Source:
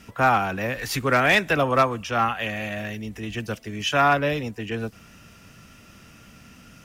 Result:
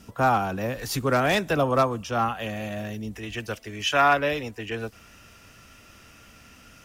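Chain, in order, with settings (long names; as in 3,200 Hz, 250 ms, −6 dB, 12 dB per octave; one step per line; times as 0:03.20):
parametric band 2,100 Hz −9 dB 1.2 octaves, from 0:03.15 170 Hz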